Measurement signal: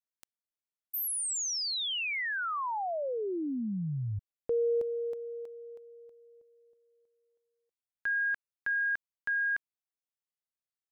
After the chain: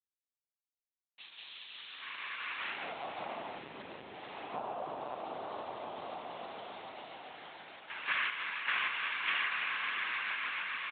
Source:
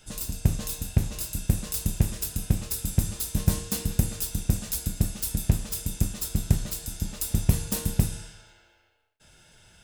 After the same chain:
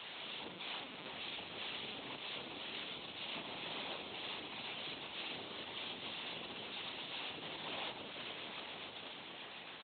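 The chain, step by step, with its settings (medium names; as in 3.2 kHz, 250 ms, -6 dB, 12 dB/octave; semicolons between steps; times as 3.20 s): spectrogram pixelated in time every 200 ms; noise-vocoded speech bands 4; echo with a slow build-up 143 ms, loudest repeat 5, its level -14 dB; word length cut 8-bit, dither none; compression 6:1, threshold -33 dBFS; tilt shelf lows -7 dB, about 700 Hz; LPC vocoder at 8 kHz pitch kept; high-pass 290 Hz 12 dB/octave; doubling 37 ms -11 dB; trim -2 dB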